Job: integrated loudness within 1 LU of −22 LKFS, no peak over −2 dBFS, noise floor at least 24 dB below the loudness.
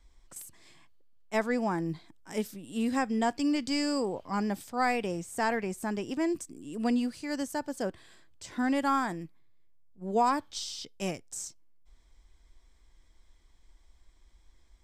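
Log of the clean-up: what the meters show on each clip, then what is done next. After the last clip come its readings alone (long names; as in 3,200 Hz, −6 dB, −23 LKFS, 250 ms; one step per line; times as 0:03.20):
integrated loudness −31.5 LKFS; sample peak −16.0 dBFS; target loudness −22.0 LKFS
→ level +9.5 dB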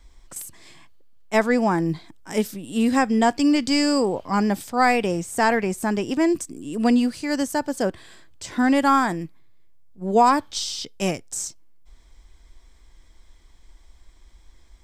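integrated loudness −22.0 LKFS; sample peak −6.5 dBFS; background noise floor −52 dBFS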